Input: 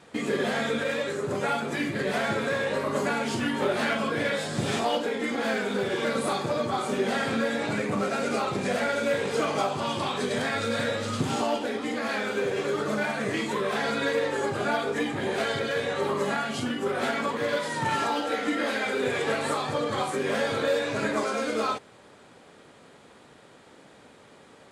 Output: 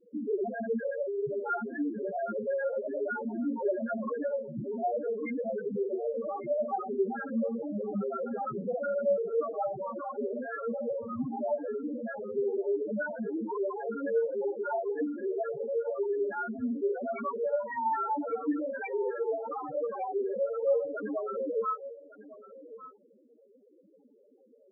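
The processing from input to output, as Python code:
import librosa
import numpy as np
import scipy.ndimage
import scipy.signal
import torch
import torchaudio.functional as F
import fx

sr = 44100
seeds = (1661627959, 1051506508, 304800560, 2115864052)

y = fx.graphic_eq(x, sr, hz=(125, 4000, 8000), db=(-5, -4, -10))
y = fx.spec_topn(y, sr, count=2)
y = y + 10.0 ** (-16.5 / 20.0) * np.pad(y, (int(1153 * sr / 1000.0), 0))[:len(y)]
y = y * 10.0 ** (2.0 / 20.0)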